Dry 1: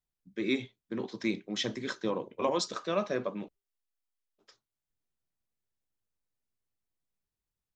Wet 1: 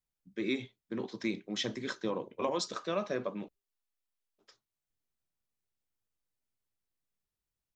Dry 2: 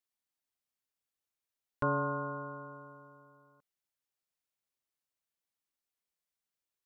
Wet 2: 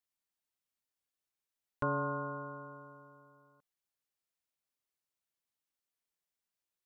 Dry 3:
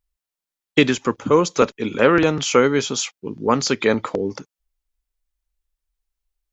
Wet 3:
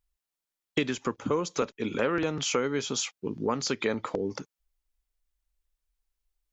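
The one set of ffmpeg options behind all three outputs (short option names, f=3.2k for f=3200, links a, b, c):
-af "acompressor=threshold=-26dB:ratio=3,volume=-1.5dB"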